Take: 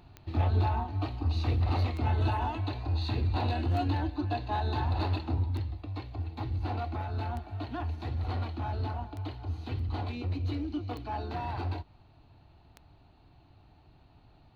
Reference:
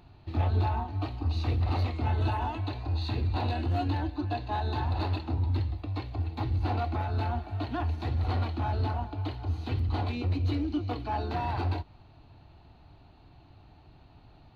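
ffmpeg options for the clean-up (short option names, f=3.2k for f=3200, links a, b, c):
-af "adeclick=t=4,asetnsamples=n=441:p=0,asendcmd='5.43 volume volume 4dB',volume=0dB"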